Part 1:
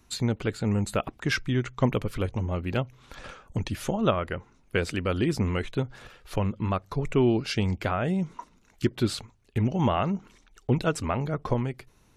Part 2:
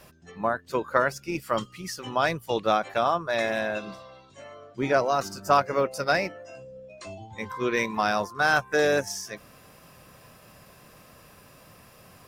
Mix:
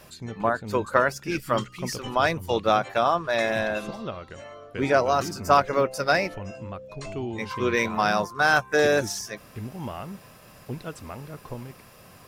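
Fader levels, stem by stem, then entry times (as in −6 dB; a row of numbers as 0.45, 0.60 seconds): −10.5, +2.0 decibels; 0.00, 0.00 seconds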